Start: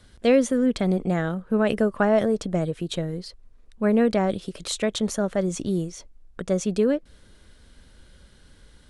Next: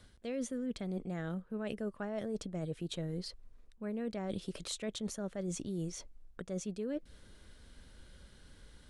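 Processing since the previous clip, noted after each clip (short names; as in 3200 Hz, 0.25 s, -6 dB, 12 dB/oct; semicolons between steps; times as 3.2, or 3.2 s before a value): dynamic EQ 940 Hz, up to -4 dB, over -36 dBFS, Q 0.71; reverse; compressor 12:1, threshold -30 dBFS, peak gain reduction 15.5 dB; reverse; gain -4.5 dB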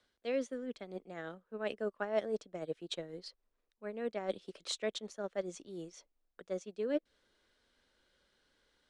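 three-band isolator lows -18 dB, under 300 Hz, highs -17 dB, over 7300 Hz; upward expander 2.5:1, over -50 dBFS; gain +10 dB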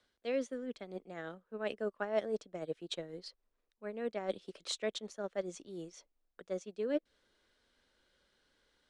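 nothing audible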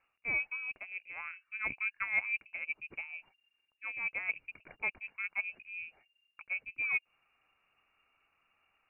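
inverted band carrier 2800 Hz; gain +1 dB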